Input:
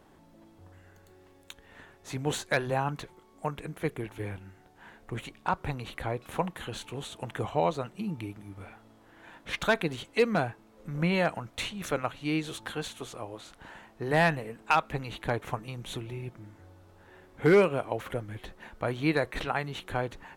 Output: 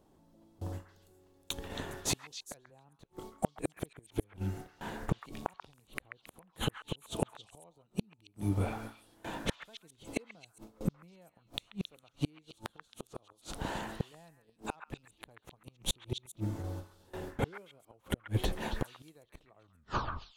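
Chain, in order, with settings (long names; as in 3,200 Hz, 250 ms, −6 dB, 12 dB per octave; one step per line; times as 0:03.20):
turntable brake at the end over 0.98 s
noise gate with hold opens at −44 dBFS
parametric band 1,800 Hz −11.5 dB 1.4 octaves
in parallel at 0 dB: downward compressor 5 to 1, threshold −41 dBFS, peak gain reduction 20 dB
on the sum: gate with flip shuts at −27 dBFS, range −41 dB
on a send: echo through a band-pass that steps 136 ms, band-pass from 1,500 Hz, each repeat 1.4 octaves, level −4.5 dB
on the sum: level +9 dB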